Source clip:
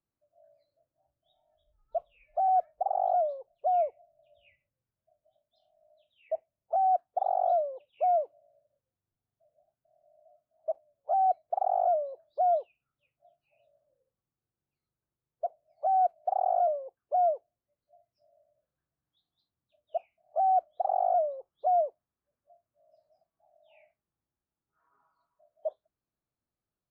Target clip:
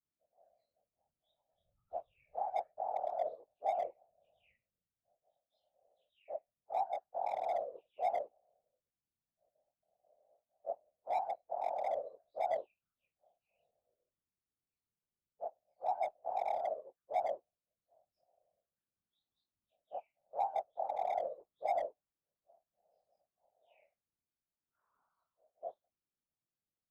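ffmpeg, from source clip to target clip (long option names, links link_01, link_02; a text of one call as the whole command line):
ffmpeg -i in.wav -af "afftfilt=real='re':imag='-im':win_size=2048:overlap=0.75,asoftclip=type=hard:threshold=-24.5dB,afftfilt=real='hypot(re,im)*cos(2*PI*random(0))':imag='hypot(re,im)*sin(2*PI*random(1))':win_size=512:overlap=0.75,volume=1dB" out.wav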